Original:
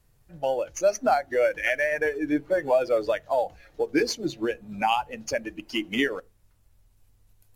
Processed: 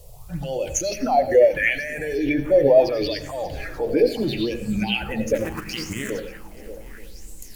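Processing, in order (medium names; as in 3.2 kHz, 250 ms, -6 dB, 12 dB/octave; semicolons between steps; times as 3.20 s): 5.34–6.10 s: cycle switcher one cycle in 2, muted; treble shelf 3.3 kHz +8.5 dB; word length cut 12-bit, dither triangular; in parallel at +1 dB: compressor with a negative ratio -33 dBFS; on the sum: peak limiter -19.5 dBFS, peak gain reduction 12 dB; hum notches 50/100/150/200/250 Hz; touch-sensitive phaser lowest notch 250 Hz, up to 1.5 kHz, full sweep at -23 dBFS; bass shelf 270 Hz +10 dB; multi-head delay 293 ms, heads second and third, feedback 48%, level -21 dB; on a send at -8 dB: reverberation RT60 0.45 s, pre-delay 77 ms; on the sum: sweeping bell 0.75 Hz 510–7900 Hz +16 dB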